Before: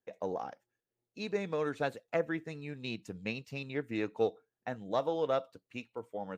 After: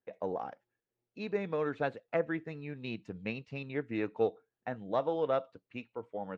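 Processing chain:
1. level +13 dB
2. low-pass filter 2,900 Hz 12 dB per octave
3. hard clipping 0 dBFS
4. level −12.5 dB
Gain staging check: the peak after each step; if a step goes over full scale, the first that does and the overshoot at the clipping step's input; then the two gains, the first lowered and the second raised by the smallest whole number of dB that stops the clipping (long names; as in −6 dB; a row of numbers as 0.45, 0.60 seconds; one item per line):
−5.0, −5.0, −5.0, −17.5 dBFS
no step passes full scale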